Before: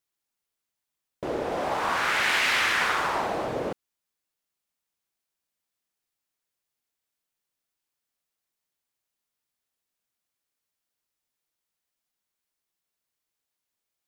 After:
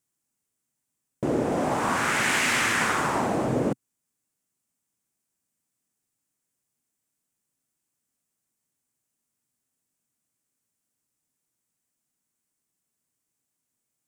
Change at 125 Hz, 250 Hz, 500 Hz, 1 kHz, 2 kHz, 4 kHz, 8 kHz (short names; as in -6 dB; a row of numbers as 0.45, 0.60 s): +10.5, +9.5, +2.5, +0.5, -0.5, -2.5, +6.5 dB